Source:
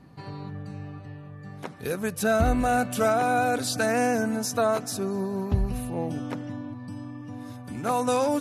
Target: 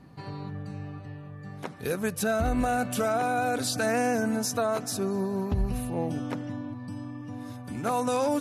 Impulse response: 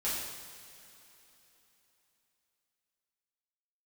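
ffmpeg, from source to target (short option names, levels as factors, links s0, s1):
-af "alimiter=limit=0.133:level=0:latency=1:release=71"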